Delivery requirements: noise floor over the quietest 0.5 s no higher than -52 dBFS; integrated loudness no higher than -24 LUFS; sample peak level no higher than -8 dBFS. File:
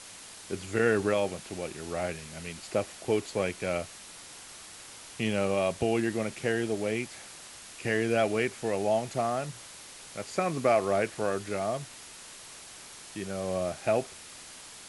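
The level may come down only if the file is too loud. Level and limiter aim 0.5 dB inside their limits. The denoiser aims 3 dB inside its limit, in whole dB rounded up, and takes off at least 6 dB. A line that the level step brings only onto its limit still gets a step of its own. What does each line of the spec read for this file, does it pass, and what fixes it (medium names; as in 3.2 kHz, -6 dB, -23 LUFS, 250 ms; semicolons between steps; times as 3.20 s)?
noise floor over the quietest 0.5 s -47 dBFS: fail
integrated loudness -30.5 LUFS: pass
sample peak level -12.0 dBFS: pass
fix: noise reduction 8 dB, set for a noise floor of -47 dBFS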